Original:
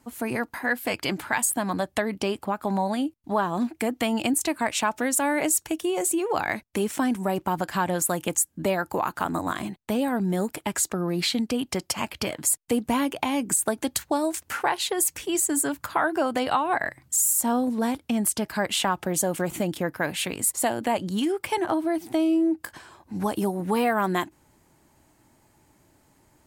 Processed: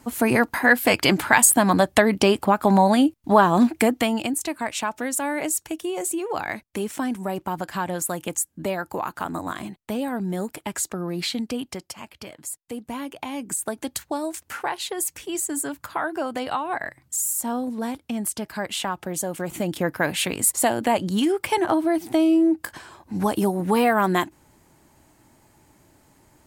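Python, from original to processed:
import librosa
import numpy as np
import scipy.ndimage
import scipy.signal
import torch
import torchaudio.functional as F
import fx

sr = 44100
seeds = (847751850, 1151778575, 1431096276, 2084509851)

y = fx.gain(x, sr, db=fx.line((3.78, 9.0), (4.3, -2.0), (11.58, -2.0), (11.98, -10.5), (12.57, -10.5), (13.76, -3.0), (19.38, -3.0), (19.88, 4.0)))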